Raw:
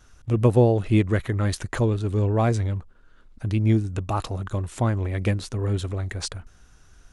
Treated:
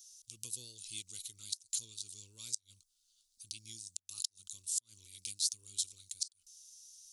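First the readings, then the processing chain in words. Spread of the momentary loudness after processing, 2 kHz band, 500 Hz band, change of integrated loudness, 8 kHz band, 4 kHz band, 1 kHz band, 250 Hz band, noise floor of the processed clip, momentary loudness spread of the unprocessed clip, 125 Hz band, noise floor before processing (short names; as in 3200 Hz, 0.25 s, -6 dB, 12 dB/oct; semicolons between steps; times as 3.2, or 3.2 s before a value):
19 LU, -27.0 dB, under -40 dB, -16.0 dB, +4.5 dB, -2.0 dB, under -40 dB, under -40 dB, -79 dBFS, 11 LU, under -40 dB, -54 dBFS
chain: inverse Chebyshev high-pass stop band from 1900 Hz, stop band 50 dB; flipped gate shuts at -28 dBFS, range -28 dB; gain +9.5 dB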